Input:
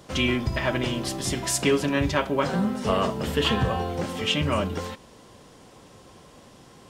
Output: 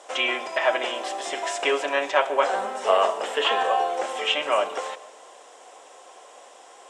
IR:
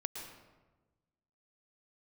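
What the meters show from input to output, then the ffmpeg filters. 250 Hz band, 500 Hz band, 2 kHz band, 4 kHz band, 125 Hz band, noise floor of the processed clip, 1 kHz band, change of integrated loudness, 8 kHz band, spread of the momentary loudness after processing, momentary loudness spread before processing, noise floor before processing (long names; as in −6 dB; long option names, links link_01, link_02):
−14.5 dB, +3.0 dB, +3.5 dB, +1.0 dB, below −30 dB, −49 dBFS, +6.5 dB, +1.0 dB, −5.5 dB, 8 LU, 6 LU, −51 dBFS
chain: -filter_complex "[0:a]acrossover=split=4100[link_01][link_02];[link_02]acompressor=threshold=-45dB:ratio=4:attack=1:release=60[link_03];[link_01][link_03]amix=inputs=2:normalize=0,highpass=frequency=470:width=0.5412,highpass=frequency=470:width=1.3066,equalizer=frequency=730:width_type=q:width=4:gain=7,equalizer=frequency=4500:width_type=q:width=4:gain=-8,equalizer=frequency=7700:width_type=q:width=4:gain=6,lowpass=frequency=9600:width=0.5412,lowpass=frequency=9600:width=1.3066,asplit=2[link_04][link_05];[1:a]atrim=start_sample=2205[link_06];[link_05][link_06]afir=irnorm=-1:irlink=0,volume=-11.5dB[link_07];[link_04][link_07]amix=inputs=2:normalize=0,volume=2dB"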